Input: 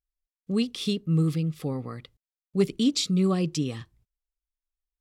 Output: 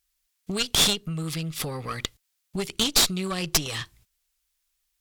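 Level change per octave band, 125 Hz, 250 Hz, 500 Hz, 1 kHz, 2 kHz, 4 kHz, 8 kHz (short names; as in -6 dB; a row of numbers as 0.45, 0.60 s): -5.5, -7.0, -3.5, +7.0, +11.5, +10.0, +12.5 dB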